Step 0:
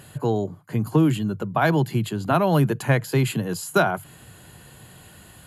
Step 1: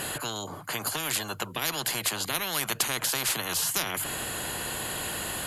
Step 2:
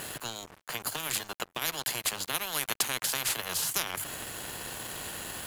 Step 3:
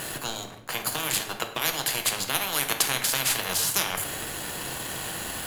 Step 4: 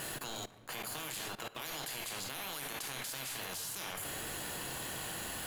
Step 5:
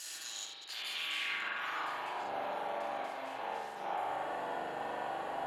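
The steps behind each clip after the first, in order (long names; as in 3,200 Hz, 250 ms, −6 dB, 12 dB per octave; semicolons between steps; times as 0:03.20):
every bin compressed towards the loudest bin 10 to 1; level −2 dB
dead-zone distortion −36 dBFS
rectangular room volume 320 cubic metres, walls mixed, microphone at 0.65 metres; level +4.5 dB
output level in coarse steps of 19 dB; soft clipping −30 dBFS, distortion −14 dB; level −1.5 dB
delay that plays each chunk backwards 107 ms, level −6.5 dB; spring reverb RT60 1.2 s, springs 41 ms, chirp 40 ms, DRR −5 dB; band-pass filter sweep 5,800 Hz → 730 Hz, 0:00.49–0:02.29; level +6 dB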